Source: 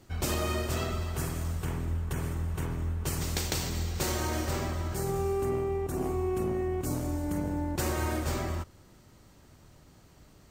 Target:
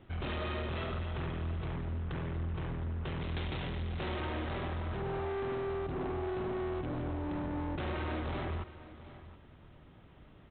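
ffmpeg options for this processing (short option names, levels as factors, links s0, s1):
-af "aresample=8000,asoftclip=type=hard:threshold=0.02,aresample=44100,aecho=1:1:720:0.158"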